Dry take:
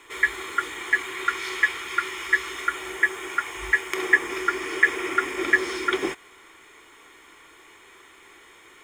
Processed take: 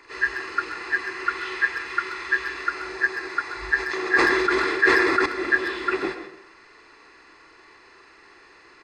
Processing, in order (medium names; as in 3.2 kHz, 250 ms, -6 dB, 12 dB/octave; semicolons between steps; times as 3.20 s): knee-point frequency compression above 1.5 kHz 1.5:1; speakerphone echo 130 ms, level -11 dB; algorithmic reverb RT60 0.51 s, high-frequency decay 0.45×, pre-delay 85 ms, DRR 10.5 dB; 3.76–5.26 s: decay stretcher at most 24 dB/s